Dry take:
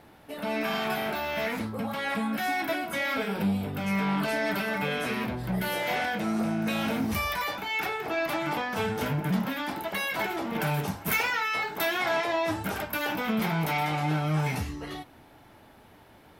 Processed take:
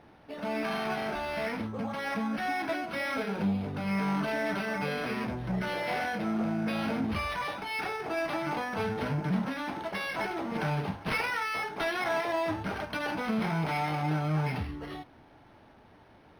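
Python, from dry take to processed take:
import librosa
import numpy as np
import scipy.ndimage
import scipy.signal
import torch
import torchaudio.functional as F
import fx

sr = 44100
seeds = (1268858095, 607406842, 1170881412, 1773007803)

y = np.interp(np.arange(len(x)), np.arange(len(x))[::6], x[::6])
y = y * 10.0 ** (-2.0 / 20.0)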